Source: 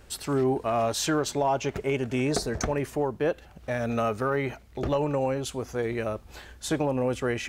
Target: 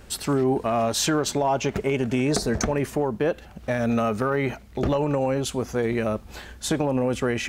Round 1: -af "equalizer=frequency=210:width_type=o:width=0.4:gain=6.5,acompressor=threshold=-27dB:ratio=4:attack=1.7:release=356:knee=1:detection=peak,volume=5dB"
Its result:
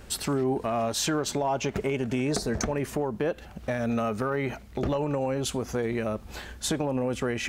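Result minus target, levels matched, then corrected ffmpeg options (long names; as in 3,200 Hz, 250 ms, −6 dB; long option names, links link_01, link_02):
downward compressor: peak gain reduction +4.5 dB
-af "equalizer=frequency=210:width_type=o:width=0.4:gain=6.5,acompressor=threshold=-21dB:ratio=4:attack=1.7:release=356:knee=1:detection=peak,volume=5dB"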